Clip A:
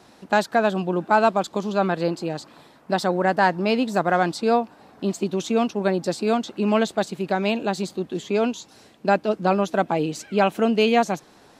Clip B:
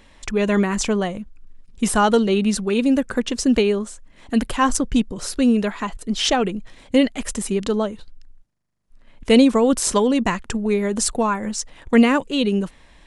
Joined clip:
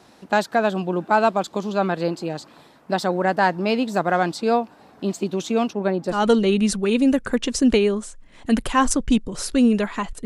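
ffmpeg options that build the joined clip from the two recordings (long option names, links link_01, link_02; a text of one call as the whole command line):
ffmpeg -i cue0.wav -i cue1.wav -filter_complex "[0:a]asettb=1/sr,asplit=3[link_01][link_02][link_03];[link_01]atrim=end=5.734[link_04];[link_02]atrim=start=5.73:end=6.28,asetpts=PTS-STARTPTS,afade=type=in:duration=0.004:curve=qsin,afade=type=out:start_time=0.546:duration=0.004:curve=qsin,highshelf=frequency=3100:gain=-9.5[link_05];[link_03]atrim=start=6.276[link_06];[link_04][link_05]acrossfade=duration=0.004:curve1=hsin:curve2=qsin[link_07];[link_07][link_06]acrossfade=duration=0.004:curve1=qsin:curve2=hsin,apad=whole_dur=10.25,atrim=end=10.25,atrim=end=6.28,asetpts=PTS-STARTPTS[link_08];[1:a]atrim=start=1.92:end=6.09,asetpts=PTS-STARTPTS[link_09];[link_08][link_09]acrossfade=duration=0.2:curve1=tri:curve2=tri" out.wav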